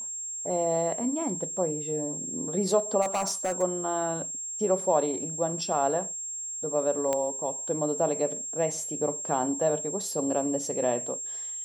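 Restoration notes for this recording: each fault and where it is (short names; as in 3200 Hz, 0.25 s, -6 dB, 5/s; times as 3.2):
tone 7500 Hz -33 dBFS
3.01–3.63 clipped -23 dBFS
7.13 pop -14 dBFS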